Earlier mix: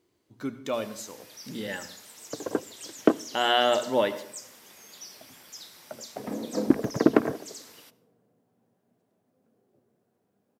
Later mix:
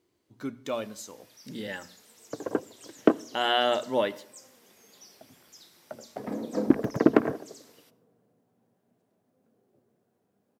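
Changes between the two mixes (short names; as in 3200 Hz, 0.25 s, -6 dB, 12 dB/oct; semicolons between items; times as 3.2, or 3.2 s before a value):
speech: send -9.5 dB; first sound -8.5 dB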